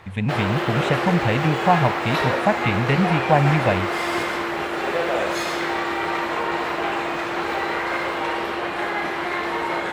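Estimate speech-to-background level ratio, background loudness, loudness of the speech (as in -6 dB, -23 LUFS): 2.0 dB, -24.0 LUFS, -22.0 LUFS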